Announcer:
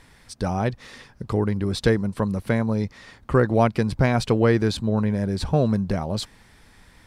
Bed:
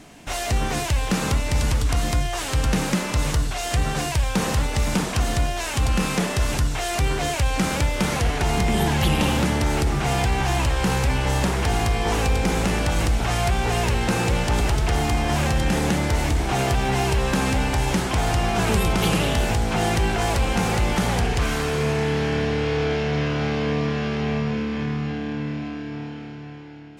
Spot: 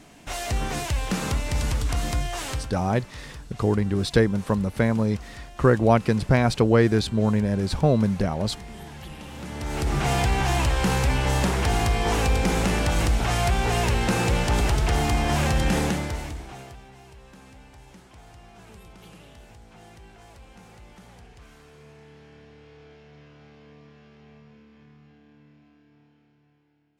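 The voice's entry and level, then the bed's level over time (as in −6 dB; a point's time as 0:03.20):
2.30 s, +0.5 dB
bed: 0:02.51 −4 dB
0:02.75 −20 dB
0:09.28 −20 dB
0:09.96 −1 dB
0:15.80 −1 dB
0:16.93 −27 dB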